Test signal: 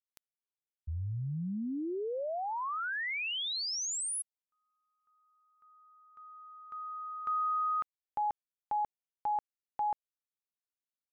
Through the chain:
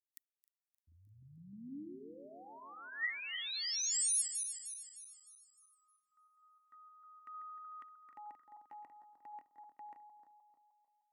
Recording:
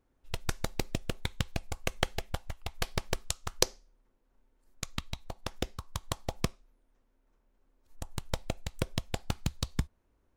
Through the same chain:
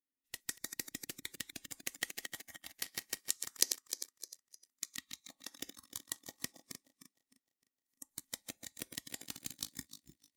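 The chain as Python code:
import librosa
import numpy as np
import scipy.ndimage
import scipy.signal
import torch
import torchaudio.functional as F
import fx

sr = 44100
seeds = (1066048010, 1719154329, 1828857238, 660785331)

y = fx.reverse_delay_fb(x, sr, ms=153, feedback_pct=67, wet_db=-7.0)
y = fx.bass_treble(y, sr, bass_db=10, treble_db=3)
y = fx.noise_reduce_blind(y, sr, reduce_db=12)
y = np.diff(y, prepend=0.0)
y = fx.small_body(y, sr, hz=(280.0, 1900.0), ring_ms=30, db=17)
y = y * librosa.db_to_amplitude(-2.5)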